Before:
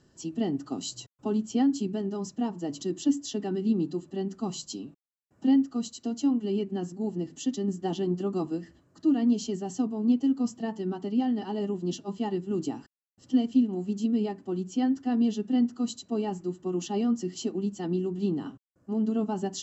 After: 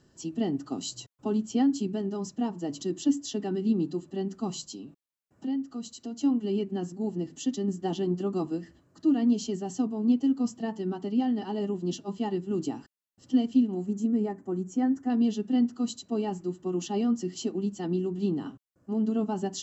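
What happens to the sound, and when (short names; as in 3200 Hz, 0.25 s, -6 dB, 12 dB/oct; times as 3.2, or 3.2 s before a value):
4.67–6.21 compressor 1.5:1, threshold -43 dBFS
13.86–15.1 band shelf 3600 Hz -12.5 dB 1.2 oct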